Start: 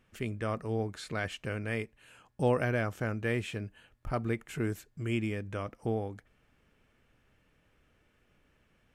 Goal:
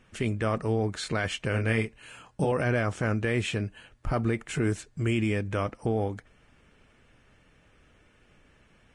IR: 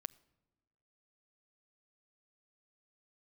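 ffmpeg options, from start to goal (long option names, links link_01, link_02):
-filter_complex "[0:a]alimiter=level_in=2dB:limit=-24dB:level=0:latency=1:release=32,volume=-2dB,asettb=1/sr,asplit=3[link_01][link_02][link_03];[link_01]atrim=end=1.514[link_04];[link_02]atrim=start=1.51:end=2.52,asetpts=PTS-STARTPTS,afade=type=in:duration=0.004:curve=qsin,afade=type=out:start_time=1.006:duration=0.004:curve=qsin,asplit=2[link_05][link_06];[link_06]adelay=27,volume=-5dB[link_07];[link_05][link_07]amix=inputs=2:normalize=0,atrim=end_sample=44541[link_08];[link_03]atrim=start=2.516[link_09];[link_04][link_08]acrossfade=duration=0.004:curve1=hsin:curve2=qsin[link_10];[link_10][link_09]acrossfade=duration=0.004:curve1=qsin:curve2=hsin,volume=8dB" -ar 22050 -c:a libvorbis -b:a 32k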